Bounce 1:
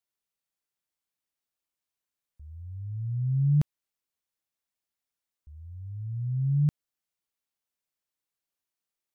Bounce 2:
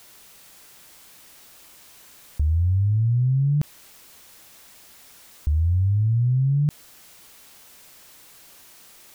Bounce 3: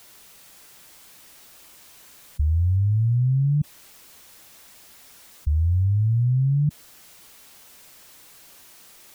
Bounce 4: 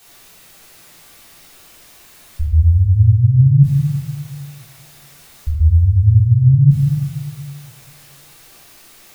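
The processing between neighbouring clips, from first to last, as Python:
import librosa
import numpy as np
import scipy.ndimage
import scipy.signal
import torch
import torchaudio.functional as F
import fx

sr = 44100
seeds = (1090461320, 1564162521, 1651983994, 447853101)

y1 = fx.env_flatten(x, sr, amount_pct=100)
y2 = fx.spec_gate(y1, sr, threshold_db=-15, keep='strong')
y2 = fx.echo_wet_highpass(y2, sr, ms=395, feedback_pct=60, hz=3500.0, wet_db=-18.0)
y3 = fx.room_shoebox(y2, sr, seeds[0], volume_m3=540.0, walls='mixed', distance_m=3.6)
y3 = y3 * 10.0 ** (-2.5 / 20.0)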